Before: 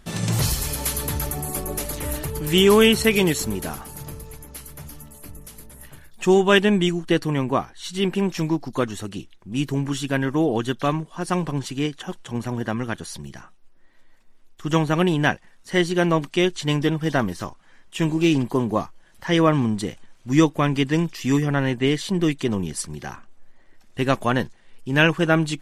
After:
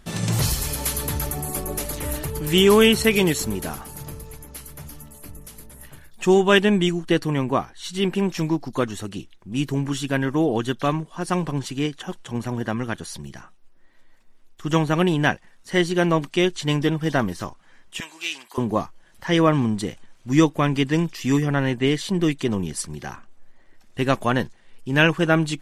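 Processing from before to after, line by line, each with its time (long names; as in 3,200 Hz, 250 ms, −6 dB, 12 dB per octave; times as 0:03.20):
0:18.00–0:18.58: high-pass filter 1,500 Hz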